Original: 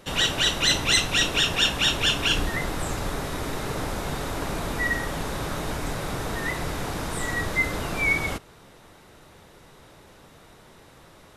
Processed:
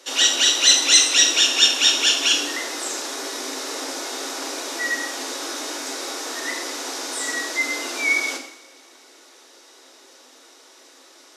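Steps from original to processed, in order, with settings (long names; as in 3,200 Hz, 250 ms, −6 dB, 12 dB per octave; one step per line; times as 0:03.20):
Chebyshev high-pass filter 250 Hz, order 10
parametric band 5,800 Hz +15 dB 1.3 octaves
coupled-rooms reverb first 0.69 s, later 2.5 s, from −24 dB, DRR 3 dB
level −2.5 dB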